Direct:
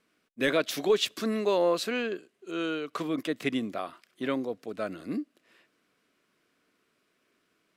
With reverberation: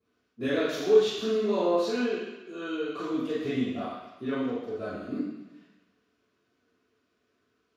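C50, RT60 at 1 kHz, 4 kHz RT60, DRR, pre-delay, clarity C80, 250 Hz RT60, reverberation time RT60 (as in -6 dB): -1.5 dB, 1.1 s, 1.1 s, -13.0 dB, 3 ms, 2.5 dB, 1.1 s, 1.0 s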